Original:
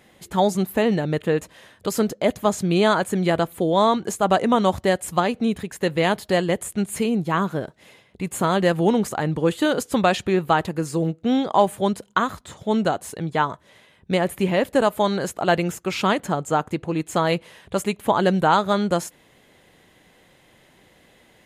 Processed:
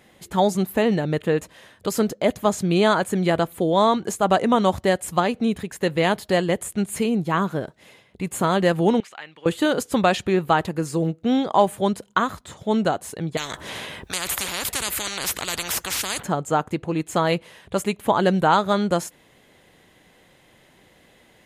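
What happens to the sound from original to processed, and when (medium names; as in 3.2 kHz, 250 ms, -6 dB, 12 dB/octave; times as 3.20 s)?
9.00–9.46 s: band-pass filter 2.6 kHz, Q 2
13.37–16.23 s: spectrum-flattening compressor 10:1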